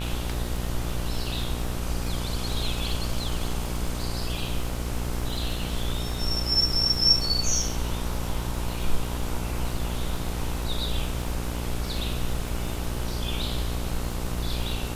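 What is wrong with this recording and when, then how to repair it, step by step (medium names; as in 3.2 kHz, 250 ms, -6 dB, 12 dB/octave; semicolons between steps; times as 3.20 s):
buzz 60 Hz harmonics 26 -31 dBFS
crackle 56 per s -33 dBFS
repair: de-click; de-hum 60 Hz, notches 26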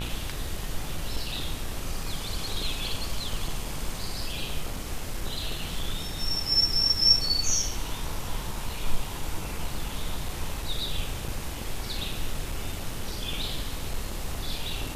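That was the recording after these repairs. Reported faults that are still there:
nothing left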